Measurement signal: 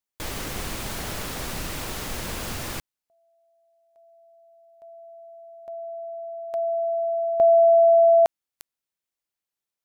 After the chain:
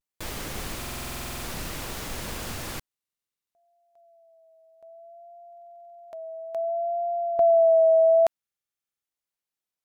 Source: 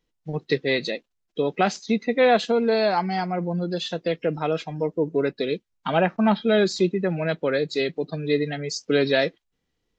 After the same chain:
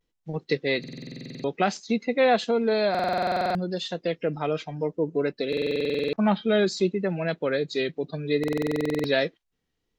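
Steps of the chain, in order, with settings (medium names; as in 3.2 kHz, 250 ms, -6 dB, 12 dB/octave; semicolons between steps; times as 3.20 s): vibrato 0.6 Hz 52 cents; buffer glitch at 0.79/2.90/5.48/8.39 s, samples 2048, times 13; trim -2.5 dB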